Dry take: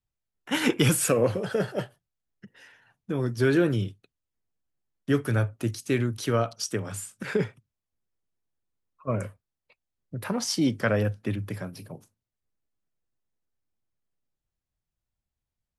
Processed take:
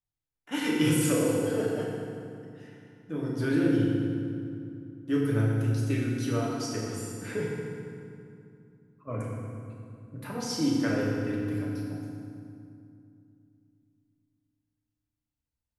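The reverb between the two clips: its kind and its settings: FDN reverb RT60 2.5 s, low-frequency decay 1.45×, high-frequency decay 0.7×, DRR -4.5 dB; gain -10 dB

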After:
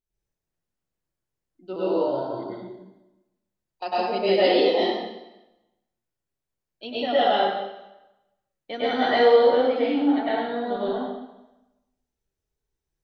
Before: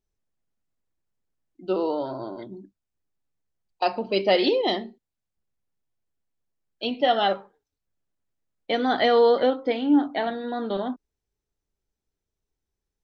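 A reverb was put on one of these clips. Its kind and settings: plate-style reverb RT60 1 s, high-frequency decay 0.9×, pre-delay 90 ms, DRR -9.5 dB; gain -9 dB

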